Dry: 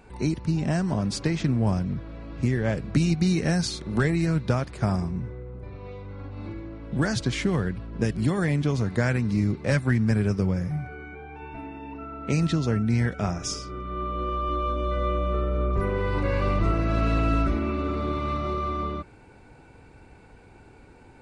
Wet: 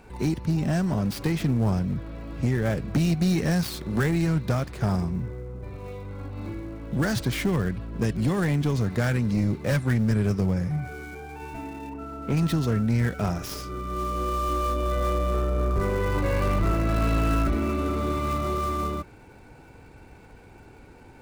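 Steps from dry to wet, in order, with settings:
gap after every zero crossing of 0.058 ms
0:11.89–0:12.37: high-shelf EQ 2,600 Hz −11.5 dB
soft clipping −18 dBFS, distortion −16 dB
level +2 dB

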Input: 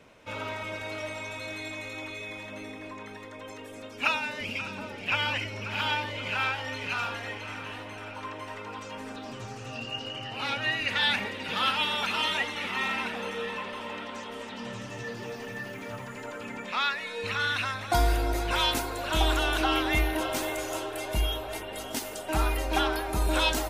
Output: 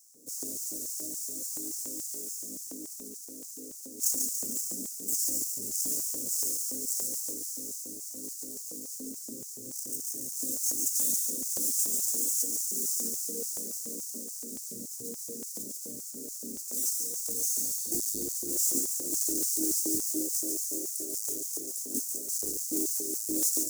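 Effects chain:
each half-wave held at its own peak
elliptic band-stop filter 280–7,100 Hz, stop band 50 dB
auto-filter high-pass square 3.5 Hz 500–5,300 Hz
dynamic equaliser 2,600 Hz, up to −4 dB, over −56 dBFS, Q 1.9
in parallel at −2.5 dB: downward compressor, threshold −35 dBFS, peak gain reduction 10.5 dB
on the sum: healed spectral selection 0:17.55–0:18.26, 1,900–4,700 Hz before
on a send: delay with a high-pass on its return 142 ms, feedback 52%, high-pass 2,800 Hz, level −4 dB

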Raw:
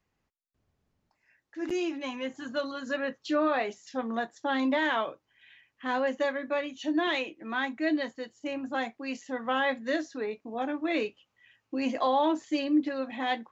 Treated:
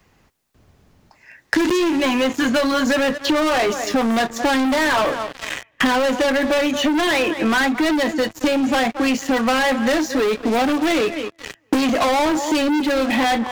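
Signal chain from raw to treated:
tape delay 220 ms, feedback 24%, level −20 dB, low-pass 3,000 Hz
leveller curve on the samples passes 5
multiband upward and downward compressor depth 100%
level +1.5 dB

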